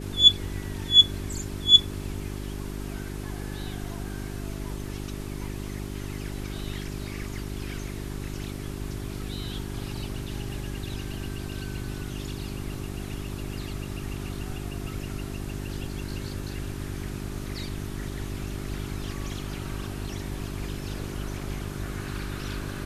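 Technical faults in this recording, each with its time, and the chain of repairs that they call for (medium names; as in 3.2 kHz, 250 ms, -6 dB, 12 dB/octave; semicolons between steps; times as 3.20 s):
hum 50 Hz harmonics 8 -35 dBFS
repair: de-hum 50 Hz, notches 8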